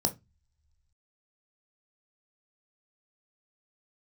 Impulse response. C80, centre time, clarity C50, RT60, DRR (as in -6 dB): 28.0 dB, 7 ms, 17.5 dB, no single decay rate, 6.5 dB